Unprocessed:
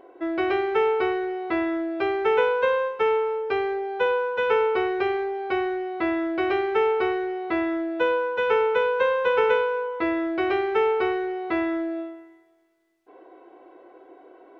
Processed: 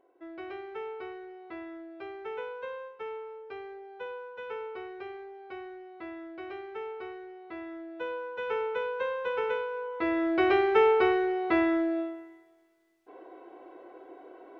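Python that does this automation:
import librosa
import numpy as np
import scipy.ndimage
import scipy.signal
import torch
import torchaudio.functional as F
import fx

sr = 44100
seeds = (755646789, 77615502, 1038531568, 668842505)

y = fx.gain(x, sr, db=fx.line((7.46, -17.0), (8.58, -10.0), (9.69, -10.0), (10.35, 0.0)))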